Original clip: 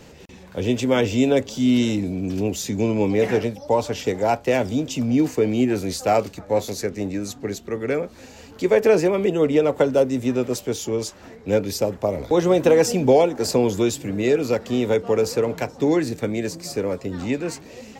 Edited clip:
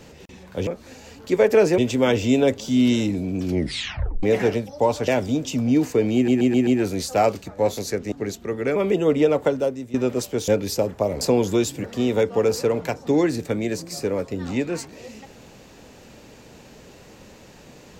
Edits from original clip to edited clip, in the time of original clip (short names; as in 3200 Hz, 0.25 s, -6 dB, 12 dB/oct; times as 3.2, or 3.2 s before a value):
2.34 tape stop 0.78 s
3.97–4.51 cut
5.58 stutter 0.13 s, 5 plays
7.03–7.35 cut
7.99–9.1 move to 0.67
9.66–10.28 fade out, to -16 dB
10.82–11.51 cut
12.24–13.47 cut
14.1–14.57 cut